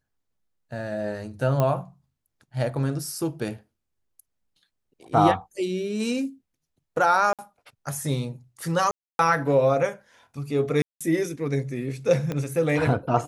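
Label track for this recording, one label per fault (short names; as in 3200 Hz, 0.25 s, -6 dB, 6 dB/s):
1.600000	1.600000	pop -11 dBFS
7.330000	7.390000	gap 57 ms
8.910000	9.190000	gap 0.282 s
10.820000	11.010000	gap 0.186 s
12.320000	12.320000	pop -16 dBFS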